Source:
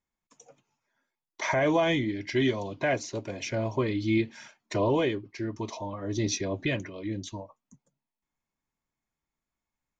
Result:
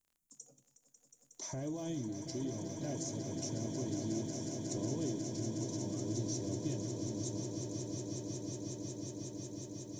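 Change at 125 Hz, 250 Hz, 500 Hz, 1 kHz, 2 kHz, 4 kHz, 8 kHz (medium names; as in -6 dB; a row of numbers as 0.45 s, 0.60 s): -5.5 dB, -7.5 dB, -13.0 dB, -18.0 dB, -25.5 dB, -10.0 dB, no reading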